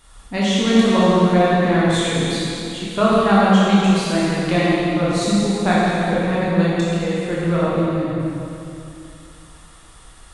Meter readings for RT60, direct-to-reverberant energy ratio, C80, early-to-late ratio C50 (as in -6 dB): 2.8 s, -8.0 dB, -2.5 dB, -4.5 dB